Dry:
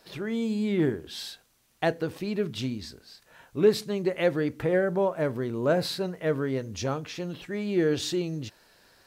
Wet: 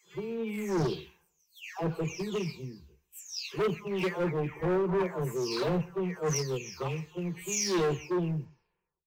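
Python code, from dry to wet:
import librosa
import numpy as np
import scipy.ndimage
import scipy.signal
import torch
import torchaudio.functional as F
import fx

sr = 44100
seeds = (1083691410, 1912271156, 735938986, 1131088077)

y = fx.spec_delay(x, sr, highs='early', ms=611)
y = fx.ripple_eq(y, sr, per_octave=0.76, db=13)
y = np.clip(10.0 ** (25.5 / 20.0) * y, -1.0, 1.0) / 10.0 ** (25.5 / 20.0)
y = y + 10.0 ** (-19.5 / 20.0) * np.pad(y, (int(131 * sr / 1000.0), 0))[:len(y)]
y = fx.band_widen(y, sr, depth_pct=100)
y = y * 10.0 ** (-1.5 / 20.0)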